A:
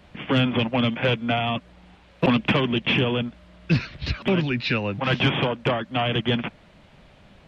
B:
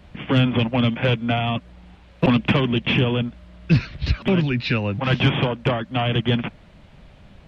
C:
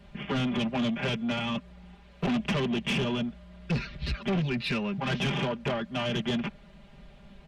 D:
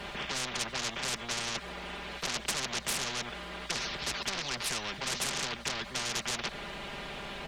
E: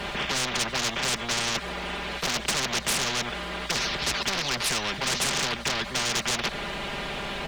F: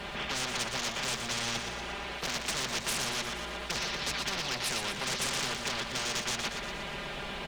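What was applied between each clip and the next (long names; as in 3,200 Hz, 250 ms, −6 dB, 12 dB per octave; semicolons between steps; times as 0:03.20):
low-shelf EQ 150 Hz +9 dB
comb filter 5 ms, depth 96%; soft clipping −16.5 dBFS, distortion −9 dB; level −7 dB
every bin compressed towards the loudest bin 10 to 1; level +7.5 dB
soft clipping −25.5 dBFS, distortion −17 dB; level +8.5 dB
repeating echo 119 ms, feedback 59%, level −7 dB; level −7 dB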